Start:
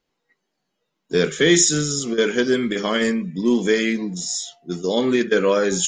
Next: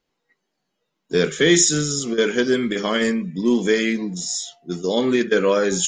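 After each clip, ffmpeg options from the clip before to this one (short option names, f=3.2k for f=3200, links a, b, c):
-af anull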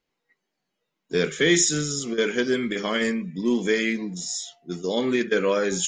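-af "equalizer=f=2.2k:w=2.4:g=4,volume=-4.5dB"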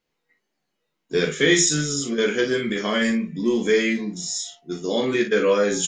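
-af "aecho=1:1:14|39|57:0.562|0.473|0.335"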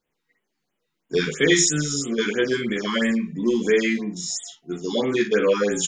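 -af "afftfilt=real='re*(1-between(b*sr/1024,530*pow(5300/530,0.5+0.5*sin(2*PI*3*pts/sr))/1.41,530*pow(5300/530,0.5+0.5*sin(2*PI*3*pts/sr))*1.41))':imag='im*(1-between(b*sr/1024,530*pow(5300/530,0.5+0.5*sin(2*PI*3*pts/sr))/1.41,530*pow(5300/530,0.5+0.5*sin(2*PI*3*pts/sr))*1.41))':win_size=1024:overlap=0.75"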